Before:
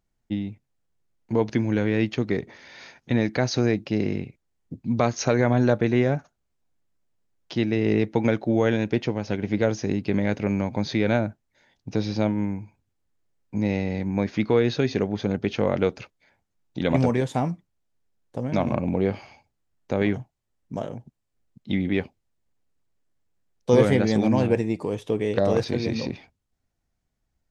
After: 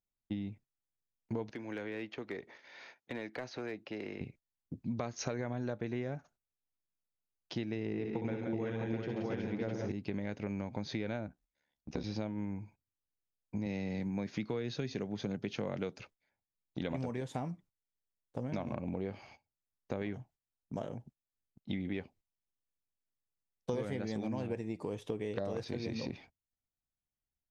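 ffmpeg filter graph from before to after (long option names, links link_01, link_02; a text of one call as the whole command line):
ffmpeg -i in.wav -filter_complex "[0:a]asettb=1/sr,asplit=3[link_01][link_02][link_03];[link_01]atrim=end=1.514[link_04];[link_02]atrim=start=1.51:end=4.21,asetpts=PTS-STARTPTS,afade=type=in:duration=0.004:curve=qsin,afade=type=out:start_time=2.696:duration=0.004:curve=qsin,bass=frequency=250:gain=-14,treble=frequency=4000:gain=-5,acrossover=split=300|1000|3500[link_05][link_06][link_07][link_08];[link_05]acompressor=threshold=-40dB:ratio=3[link_09];[link_06]acompressor=threshold=-37dB:ratio=3[link_10];[link_07]acompressor=threshold=-40dB:ratio=3[link_11];[link_08]acompressor=threshold=-56dB:ratio=3[link_12];[link_09][link_10][link_11][link_12]amix=inputs=4:normalize=0,volume=25.5dB,asoftclip=hard,volume=-25.5dB[link_13];[link_03]atrim=start=4.206[link_14];[link_04][link_13]acrossfade=duration=0.004:curve1=hsin:curve2=qsin[link_15];[link_15][link_14]acrossfade=duration=0.004:curve1=qsin:curve2=hsin,asettb=1/sr,asplit=3[link_16][link_17][link_18];[link_16]atrim=end=7.874[link_19];[link_17]atrim=start=7.87:end=9.92,asetpts=PTS-STARTPTS,afade=type=in:duration=0.004:curve=qsin,afade=type=out:start_time=2.046:duration=0.004:curve=qsin,highshelf=frequency=3900:gain=-8,bandreject=frequency=600:width=12,aecho=1:1:62|134|176|371|659:0.447|0.299|0.473|0.531|0.668,atrim=end_sample=90405[link_20];[link_18]atrim=start=9.916[link_21];[link_19][link_20]acrossfade=duration=0.004:curve1=hsin:curve2=qsin[link_22];[link_22][link_21]acrossfade=duration=0.004:curve1=qsin:curve2=hsin,asettb=1/sr,asplit=3[link_23][link_24][link_25];[link_23]atrim=end=11.274[link_26];[link_24]atrim=start=11.27:end=12.04,asetpts=PTS-STARTPTS,afade=type=in:duration=0.004:curve=qsin,afade=type=out:start_time=0.766:duration=0.004:curve=qsin,aecho=1:1:4:0.42,atrim=end_sample=33957,aeval=exprs='val(0)*sin(2*PI*36*n/s)':channel_layout=same[link_27];[link_25]atrim=start=12.036[link_28];[link_26][link_27]acrossfade=duration=0.004:curve1=hsin:curve2=qsin[link_29];[link_29][link_28]acrossfade=duration=0.004:curve1=qsin:curve2=hsin,asettb=1/sr,asplit=3[link_30][link_31][link_32];[link_30]atrim=end=13.664[link_33];[link_31]atrim=start=13.66:end=16,asetpts=PTS-STARTPTS,afade=type=in:duration=0.004:curve=qsin,afade=type=out:start_time=2.336:duration=0.004:curve=qsin,highpass=frequency=130:width_type=q:width=1.6,highshelf=frequency=3400:gain=7[link_34];[link_32]atrim=start=15.996[link_35];[link_33][link_34]acrossfade=duration=0.004:curve1=hsin:curve2=qsin[link_36];[link_36][link_35]acrossfade=duration=0.004:curve1=qsin:curve2=hsin,agate=range=-13dB:threshold=-48dB:ratio=16:detection=peak,acompressor=threshold=-27dB:ratio=6,volume=-6.5dB" out.wav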